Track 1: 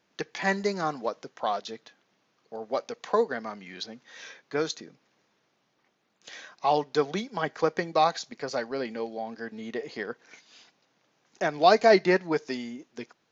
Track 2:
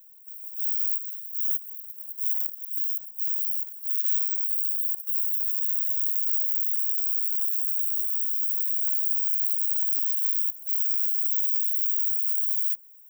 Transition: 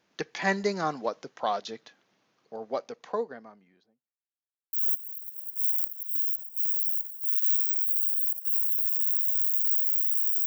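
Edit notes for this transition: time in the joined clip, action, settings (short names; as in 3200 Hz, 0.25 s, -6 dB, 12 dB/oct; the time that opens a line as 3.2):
track 1
2.18–4.17 studio fade out
4.17–4.73 mute
4.73 switch to track 2 from 1.35 s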